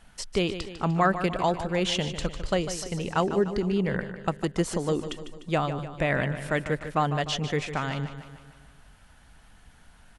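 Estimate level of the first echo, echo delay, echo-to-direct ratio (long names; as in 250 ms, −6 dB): −11.0 dB, 150 ms, −9.5 dB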